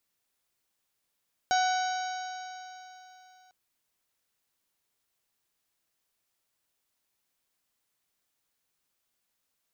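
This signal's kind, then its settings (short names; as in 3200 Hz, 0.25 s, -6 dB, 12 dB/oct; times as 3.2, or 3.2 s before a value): stretched partials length 2.00 s, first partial 739 Hz, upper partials -7/-16.5/-17.5/-12.5/-17/-13.5/-14 dB, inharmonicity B 0.0034, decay 3.31 s, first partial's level -22.5 dB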